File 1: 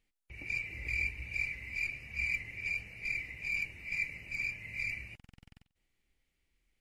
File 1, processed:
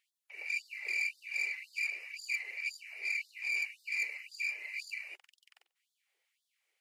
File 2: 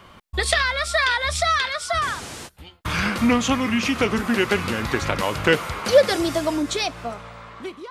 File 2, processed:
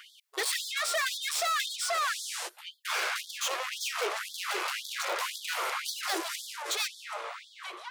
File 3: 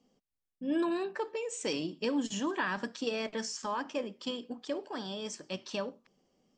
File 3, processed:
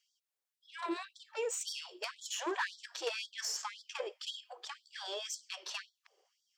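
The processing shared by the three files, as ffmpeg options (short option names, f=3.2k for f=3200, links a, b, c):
-af "aeval=exprs='(tanh(35.5*val(0)+0.35)-tanh(0.35))/35.5':c=same,bandreject=f=60:t=h:w=6,bandreject=f=120:t=h:w=6,bandreject=f=180:t=h:w=6,bandreject=f=240:t=h:w=6,bandreject=f=300:t=h:w=6,bandreject=f=360:t=h:w=6,afftfilt=real='re*gte(b*sr/1024,330*pow(3300/330,0.5+0.5*sin(2*PI*1.9*pts/sr)))':imag='im*gte(b*sr/1024,330*pow(3300/330,0.5+0.5*sin(2*PI*1.9*pts/sr)))':win_size=1024:overlap=0.75,volume=4dB"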